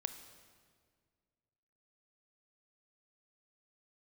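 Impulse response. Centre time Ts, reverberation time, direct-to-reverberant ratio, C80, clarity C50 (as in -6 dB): 16 ms, 1.9 s, 9.0 dB, 11.5 dB, 10.0 dB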